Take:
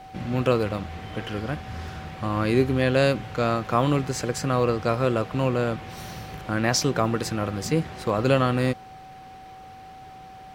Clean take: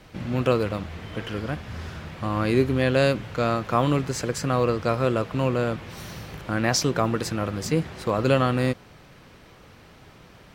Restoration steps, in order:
notch filter 760 Hz, Q 30
repair the gap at 0:01.88/0:06.06, 1.9 ms

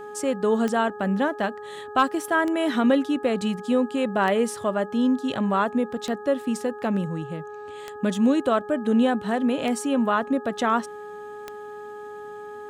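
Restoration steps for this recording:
clipped peaks rebuilt −10.5 dBFS
click removal
hum removal 417.8 Hz, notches 4

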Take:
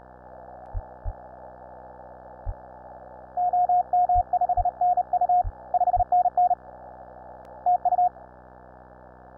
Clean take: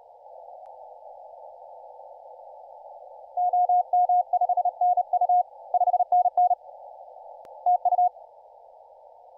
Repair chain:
hum removal 62.7 Hz, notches 28
high-pass at the plosives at 0:00.73/0:01.04/0:02.45/0:04.14/0:04.56/0:05.43/0:05.95

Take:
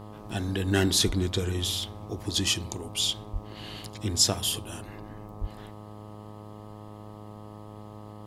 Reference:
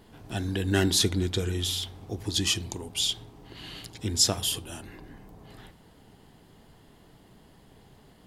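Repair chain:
hum removal 105.3 Hz, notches 12
high-pass at the plosives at 0:01.06/0:03.32/0:05.40

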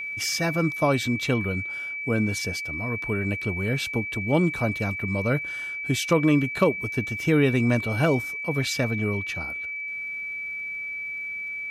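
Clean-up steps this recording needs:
clipped peaks rebuilt −9 dBFS
click removal
notch filter 2,300 Hz, Q 30

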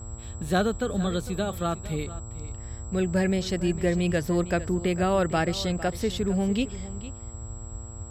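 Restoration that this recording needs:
hum removal 115.6 Hz, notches 12
notch filter 7,700 Hz, Q 30
noise reduction from a noise print 30 dB
echo removal 454 ms −15.5 dB

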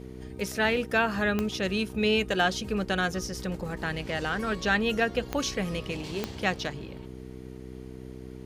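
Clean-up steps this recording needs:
click removal
hum removal 63.6 Hz, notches 7

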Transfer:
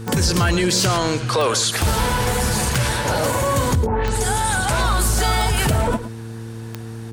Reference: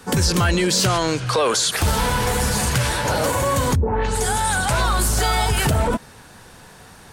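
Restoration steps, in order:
click removal
hum removal 113.3 Hz, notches 4
echo removal 111 ms −13.5 dB

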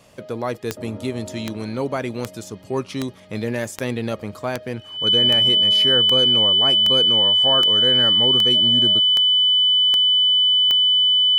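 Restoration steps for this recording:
click removal
notch filter 3,000 Hz, Q 30

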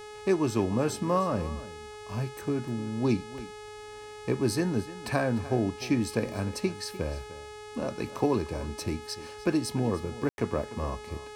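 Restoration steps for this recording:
hum removal 422.4 Hz, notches 24
ambience match 0:10.29–0:10.38
echo removal 300 ms −16.5 dB

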